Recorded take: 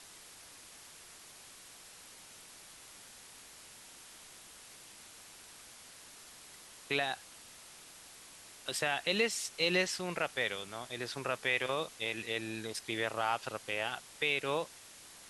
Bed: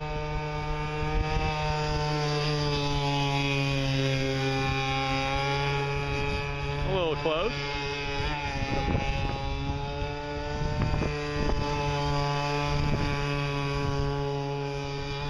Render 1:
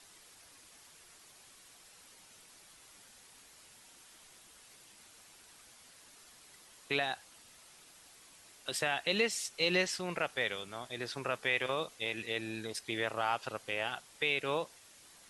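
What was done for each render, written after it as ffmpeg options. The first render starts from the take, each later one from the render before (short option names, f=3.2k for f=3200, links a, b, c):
-af "afftdn=nr=6:nf=-54"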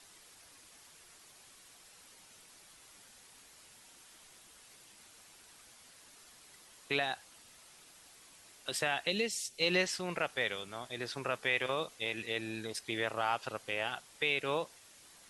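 -filter_complex "[0:a]asplit=3[a][b][c];[a]afade=t=out:st=9.09:d=0.02[d];[b]equalizer=f=1.2k:w=1:g=-14,afade=t=in:st=9.09:d=0.02,afade=t=out:st=9.6:d=0.02[e];[c]afade=t=in:st=9.6:d=0.02[f];[d][e][f]amix=inputs=3:normalize=0"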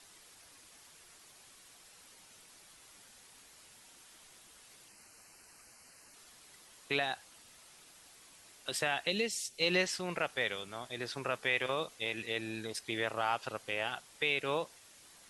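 -filter_complex "[0:a]asettb=1/sr,asplit=3[a][b][c];[a]atrim=end=4.884[d];[b]atrim=start=4.88:end=6.14,asetpts=PTS-STARTPTS,afade=t=in:d=0.004:c=qsin,afade=t=out:st=1.256:d=0.004:c=qsin,asuperstop=centerf=3500:order=4:qfactor=2.9[e];[c]atrim=start=6.136[f];[d][e]acrossfade=d=0.004:c1=hsin:c2=qsin[g];[g][f]acrossfade=d=0.004:c1=qsin:c2=hsin"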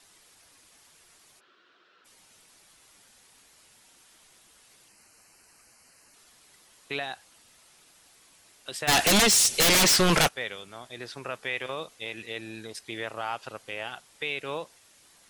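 -filter_complex "[0:a]asplit=3[a][b][c];[a]afade=t=out:st=1.39:d=0.02[d];[b]highpass=280,equalizer=f=360:t=q:w=4:g=9,equalizer=f=820:t=q:w=4:g=-9,equalizer=f=1.4k:t=q:w=4:g=10,equalizer=f=2.2k:t=q:w=4:g=-6,lowpass=f=3.6k:w=0.5412,lowpass=f=3.6k:w=1.3066,afade=t=in:st=1.39:d=0.02,afade=t=out:st=2.04:d=0.02[e];[c]afade=t=in:st=2.04:d=0.02[f];[d][e][f]amix=inputs=3:normalize=0,asplit=3[g][h][i];[g]afade=t=out:st=8.87:d=0.02[j];[h]aeval=exprs='0.15*sin(PI/2*8.91*val(0)/0.15)':c=same,afade=t=in:st=8.87:d=0.02,afade=t=out:st=10.27:d=0.02[k];[i]afade=t=in:st=10.27:d=0.02[l];[j][k][l]amix=inputs=3:normalize=0"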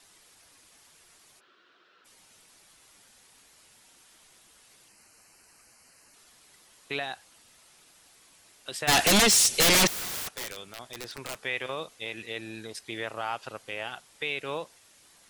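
-filter_complex "[0:a]asettb=1/sr,asplit=3[a][b][c];[a]atrim=end=9.874[d];[b]atrim=start=9.87:end=11.35,asetpts=PTS-STARTPTS,afade=t=in:d=0.004:c=qsin,afade=t=out:st=1.476:d=0.004:c=qsin,aeval=exprs='(mod(28.2*val(0)+1,2)-1)/28.2':c=same[e];[c]atrim=start=11.346[f];[d][e]acrossfade=d=0.004:c1=hsin:c2=qsin[g];[g][f]acrossfade=d=0.004:c1=qsin:c2=hsin"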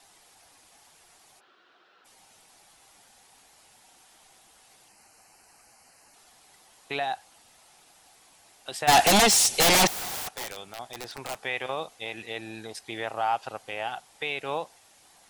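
-af "equalizer=f=780:t=o:w=0.49:g=10.5"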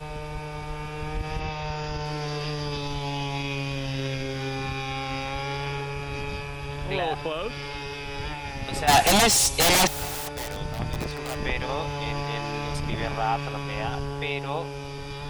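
-filter_complex "[1:a]volume=-3dB[a];[0:a][a]amix=inputs=2:normalize=0"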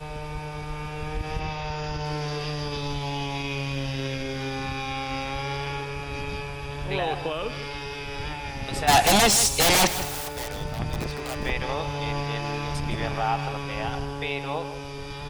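-af "aecho=1:1:160:0.251"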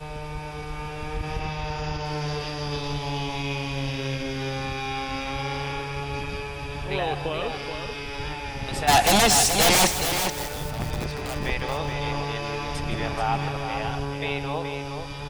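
-af "aecho=1:1:427:0.447"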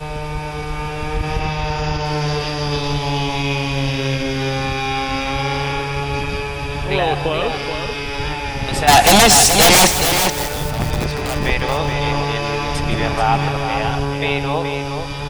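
-af "volume=9dB,alimiter=limit=-1dB:level=0:latency=1"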